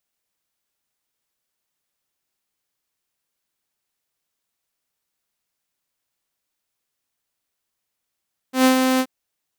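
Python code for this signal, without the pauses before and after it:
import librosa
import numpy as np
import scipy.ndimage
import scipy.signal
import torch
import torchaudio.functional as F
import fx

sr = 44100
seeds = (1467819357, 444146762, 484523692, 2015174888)

y = fx.adsr_tone(sr, wave='saw', hz=259.0, attack_ms=117.0, decay_ms=109.0, sustain_db=-5.0, held_s=0.47, release_ms=58.0, level_db=-8.5)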